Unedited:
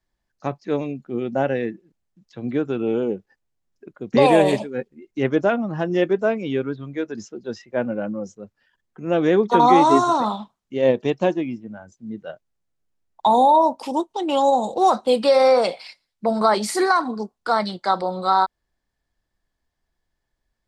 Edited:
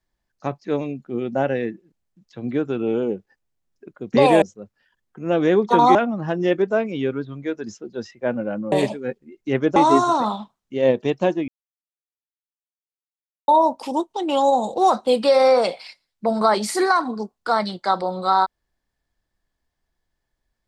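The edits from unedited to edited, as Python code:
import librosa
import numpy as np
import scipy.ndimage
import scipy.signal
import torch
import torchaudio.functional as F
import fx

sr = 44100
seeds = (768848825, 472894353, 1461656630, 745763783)

y = fx.edit(x, sr, fx.swap(start_s=4.42, length_s=1.04, other_s=8.23, other_length_s=1.53),
    fx.silence(start_s=11.48, length_s=2.0), tone=tone)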